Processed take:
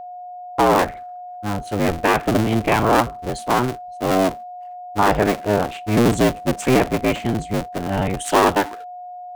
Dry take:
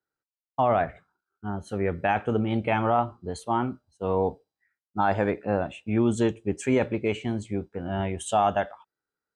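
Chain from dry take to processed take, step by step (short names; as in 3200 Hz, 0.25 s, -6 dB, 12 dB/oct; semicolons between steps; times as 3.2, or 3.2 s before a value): cycle switcher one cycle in 2, inverted; whine 720 Hz -39 dBFS; gain +7 dB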